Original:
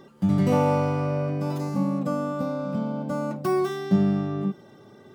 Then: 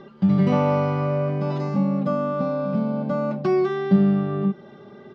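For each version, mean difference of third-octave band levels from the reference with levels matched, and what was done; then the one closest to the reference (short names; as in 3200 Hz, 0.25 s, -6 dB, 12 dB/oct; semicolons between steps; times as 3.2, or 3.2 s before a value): 3.5 dB: LPF 4500 Hz 24 dB/oct; comb 5 ms, depth 48%; in parallel at -2 dB: compressor, threshold -27 dBFS, peak gain reduction 14 dB; on the sum: gain -1 dB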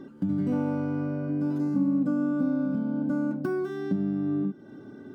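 6.5 dB: tilt -1.5 dB/oct; compressor 2.5:1, threshold -32 dBFS, peak gain reduction 13.5 dB; small resonant body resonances 280/1500 Hz, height 16 dB, ringing for 50 ms; gain -4 dB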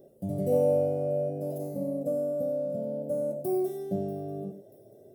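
9.0 dB: EQ curve 120 Hz 0 dB, 200 Hz -7 dB, 660 Hz +10 dB, 1000 Hz -28 dB, 1500 Hz -22 dB, 4700 Hz -13 dB, 7000 Hz -6 dB, 11000 Hz +10 dB; on a send: thin delay 0.637 s, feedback 58%, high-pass 4100 Hz, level -19 dB; on the sum: non-linear reverb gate 0.12 s rising, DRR 8 dB; gain -6.5 dB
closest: first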